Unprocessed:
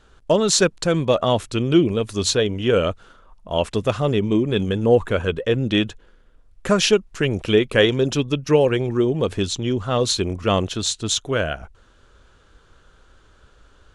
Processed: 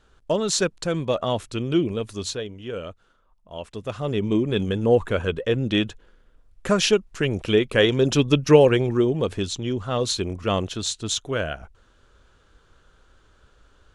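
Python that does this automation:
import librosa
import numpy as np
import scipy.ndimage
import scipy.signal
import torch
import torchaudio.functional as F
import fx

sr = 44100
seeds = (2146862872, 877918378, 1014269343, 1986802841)

y = fx.gain(x, sr, db=fx.line((2.06, -5.5), (2.55, -14.0), (3.67, -14.0), (4.27, -2.5), (7.8, -2.5), (8.36, 4.0), (9.42, -4.0)))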